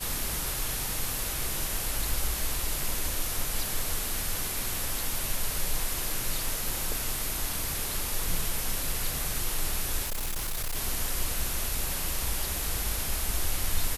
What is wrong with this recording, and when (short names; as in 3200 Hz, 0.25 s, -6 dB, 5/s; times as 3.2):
10.03–10.76 clipped -27.5 dBFS